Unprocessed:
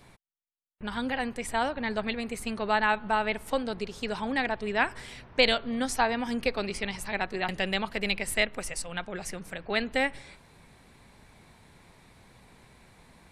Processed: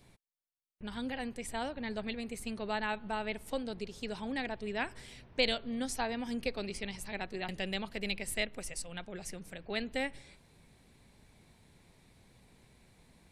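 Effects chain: peaking EQ 1.2 kHz -7.5 dB 1.7 oct; trim -5 dB

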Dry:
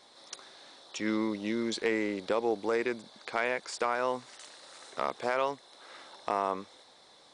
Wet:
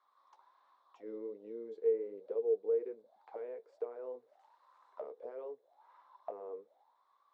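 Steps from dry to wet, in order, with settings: auto-wah 450–1200 Hz, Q 14, down, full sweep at -31 dBFS; flange 1.3 Hz, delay 7.9 ms, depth 5.4 ms, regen -48%; trim +5.5 dB

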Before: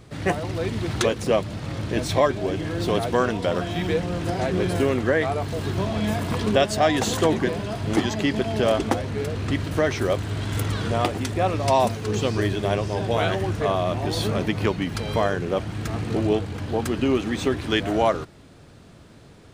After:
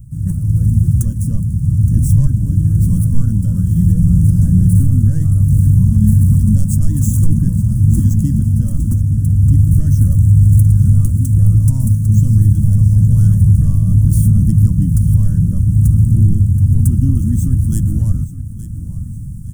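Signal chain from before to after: median filter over 3 samples; level rider gain up to 11 dB; tone controls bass -14 dB, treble -14 dB; saturation -11 dBFS, distortion -14 dB; inverse Chebyshev band-stop 380–4300 Hz, stop band 50 dB; bass shelf 61 Hz +11 dB; feedback delay 870 ms, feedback 40%, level -15 dB; loudness maximiser +25 dB; trim -1 dB

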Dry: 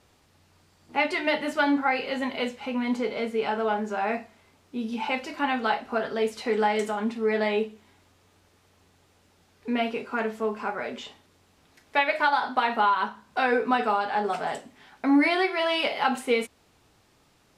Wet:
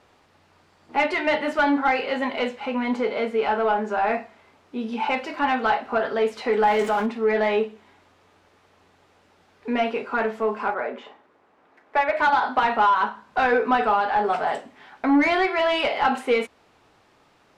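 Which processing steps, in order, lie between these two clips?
6.63–7.06 s: jump at every zero crossing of -32 dBFS; 10.74–12.17 s: three-band isolator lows -14 dB, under 210 Hz, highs -14 dB, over 2.1 kHz; overdrive pedal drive 13 dB, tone 1.3 kHz, clips at -10.5 dBFS; trim +2 dB

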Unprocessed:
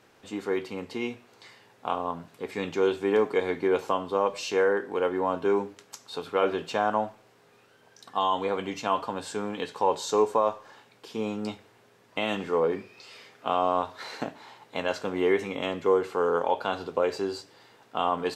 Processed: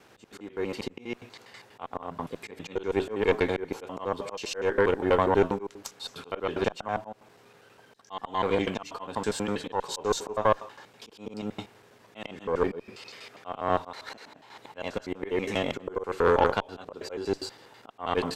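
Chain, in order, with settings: slices played last to first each 81 ms, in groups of 2; slow attack 266 ms; Chebyshev shaper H 4 -16 dB, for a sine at -12 dBFS; trim +3.5 dB

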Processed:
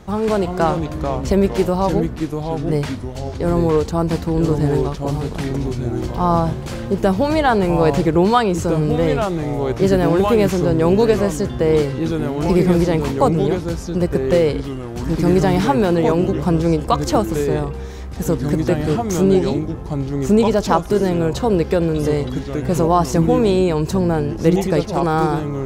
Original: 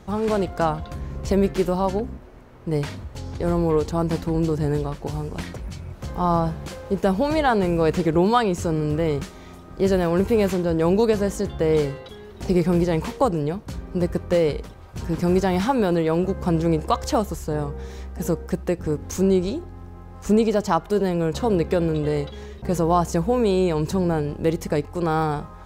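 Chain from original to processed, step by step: ever faster or slower copies 326 ms, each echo -3 st, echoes 2, each echo -6 dB; trim +4 dB

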